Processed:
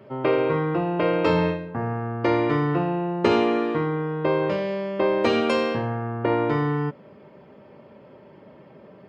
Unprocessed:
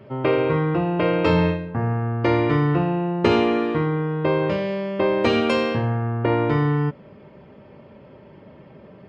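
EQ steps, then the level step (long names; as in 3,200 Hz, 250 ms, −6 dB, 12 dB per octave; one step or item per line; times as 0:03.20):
high-pass filter 230 Hz 6 dB per octave
parametric band 2,700 Hz −3 dB 1.4 octaves
0.0 dB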